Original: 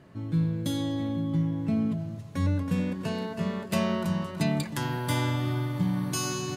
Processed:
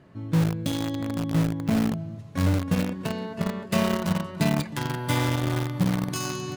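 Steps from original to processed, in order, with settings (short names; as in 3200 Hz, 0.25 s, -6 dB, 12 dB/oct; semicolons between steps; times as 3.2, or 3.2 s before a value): high shelf 6200 Hz -6.5 dB; in parallel at -6.5 dB: bit-crush 4-bit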